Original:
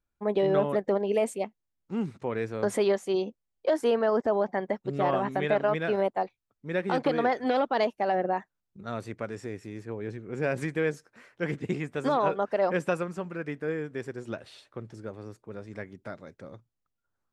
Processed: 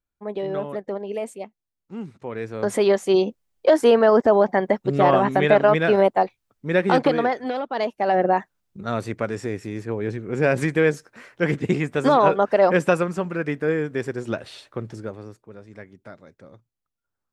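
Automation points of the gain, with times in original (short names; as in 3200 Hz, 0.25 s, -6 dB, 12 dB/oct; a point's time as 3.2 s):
2.11 s -3 dB
3.12 s +9.5 dB
6.95 s +9.5 dB
7.61 s -2.5 dB
8.24 s +9 dB
14.93 s +9 dB
15.54 s -2 dB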